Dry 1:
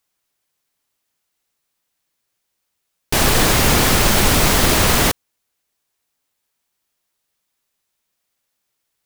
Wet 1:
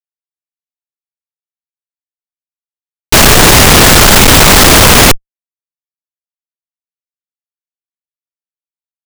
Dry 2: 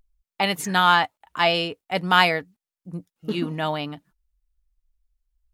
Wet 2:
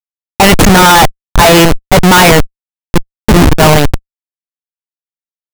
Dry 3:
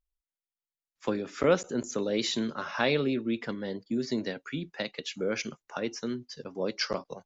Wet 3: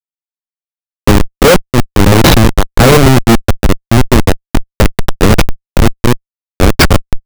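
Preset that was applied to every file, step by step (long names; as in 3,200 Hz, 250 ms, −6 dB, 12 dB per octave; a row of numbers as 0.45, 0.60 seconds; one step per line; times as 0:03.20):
comparator with hysteresis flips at −26 dBFS
leveller curve on the samples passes 3
normalise the peak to −2 dBFS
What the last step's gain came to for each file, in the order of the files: +14.5, +17.0, +24.0 decibels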